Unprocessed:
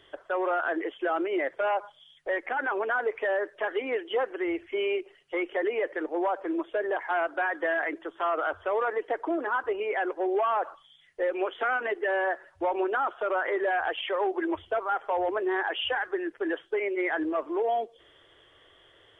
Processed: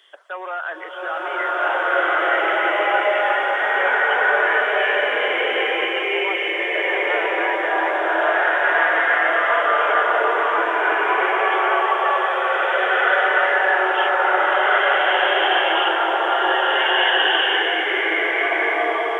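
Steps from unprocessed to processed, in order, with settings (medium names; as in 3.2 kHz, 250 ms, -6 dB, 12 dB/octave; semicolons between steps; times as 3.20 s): high-pass 670 Hz 12 dB/octave; treble shelf 2.4 kHz +9 dB; swelling reverb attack 1610 ms, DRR -12 dB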